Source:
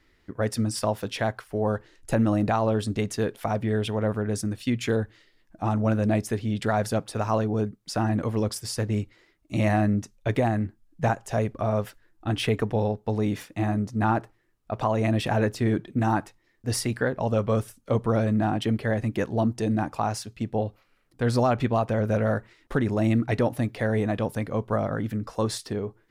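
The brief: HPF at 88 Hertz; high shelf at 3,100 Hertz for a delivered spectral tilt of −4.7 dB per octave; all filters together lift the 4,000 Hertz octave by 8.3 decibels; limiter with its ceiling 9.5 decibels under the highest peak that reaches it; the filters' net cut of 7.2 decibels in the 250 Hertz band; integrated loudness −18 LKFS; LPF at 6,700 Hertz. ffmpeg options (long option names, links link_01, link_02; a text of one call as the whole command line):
ffmpeg -i in.wav -af "highpass=88,lowpass=6700,equalizer=frequency=250:width_type=o:gain=-9,highshelf=frequency=3100:gain=7,equalizer=frequency=4000:width_type=o:gain=6,volume=12.5dB,alimiter=limit=-6dB:level=0:latency=1" out.wav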